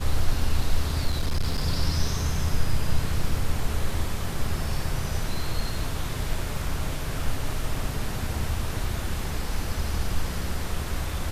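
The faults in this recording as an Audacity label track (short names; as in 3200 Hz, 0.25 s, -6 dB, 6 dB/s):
1.070000	1.650000	clipped -19.5 dBFS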